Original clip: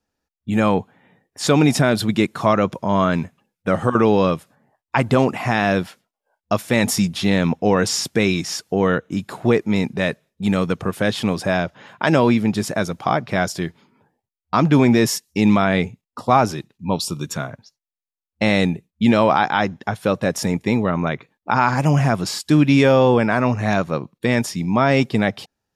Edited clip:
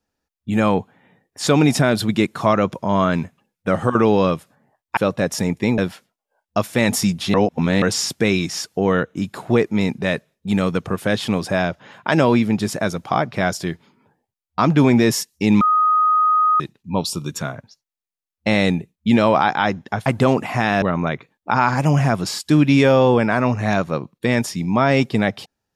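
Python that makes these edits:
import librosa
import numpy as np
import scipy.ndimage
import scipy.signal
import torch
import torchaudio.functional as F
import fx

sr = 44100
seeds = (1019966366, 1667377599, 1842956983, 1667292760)

y = fx.edit(x, sr, fx.swap(start_s=4.97, length_s=0.76, other_s=20.01, other_length_s=0.81),
    fx.reverse_span(start_s=7.29, length_s=0.48),
    fx.bleep(start_s=15.56, length_s=0.99, hz=1250.0, db=-12.5), tone=tone)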